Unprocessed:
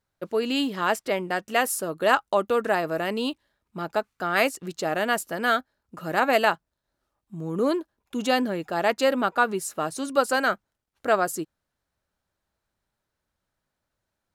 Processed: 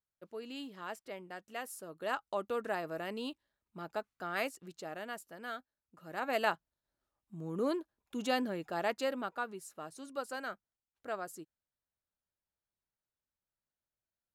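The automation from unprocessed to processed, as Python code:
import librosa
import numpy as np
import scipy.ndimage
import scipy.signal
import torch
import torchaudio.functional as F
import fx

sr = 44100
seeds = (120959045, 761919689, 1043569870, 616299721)

y = fx.gain(x, sr, db=fx.line((1.69, -19.0), (2.48, -12.5), (4.28, -12.5), (5.26, -19.5), (6.01, -19.5), (6.48, -9.5), (8.75, -9.5), (9.54, -17.5)))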